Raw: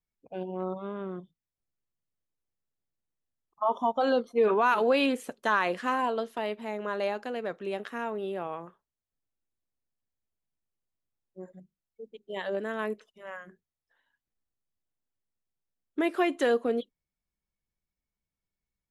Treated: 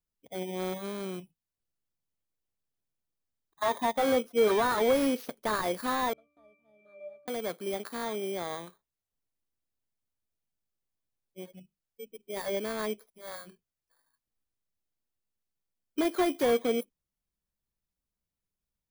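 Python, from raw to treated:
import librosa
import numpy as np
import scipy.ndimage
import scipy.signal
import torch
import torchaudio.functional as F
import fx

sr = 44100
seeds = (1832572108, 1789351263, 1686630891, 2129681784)

y = fx.bit_reversed(x, sr, seeds[0], block=16)
y = fx.octave_resonator(y, sr, note='D', decay_s=0.64, at=(6.13, 7.28))
y = fx.slew_limit(y, sr, full_power_hz=110.0)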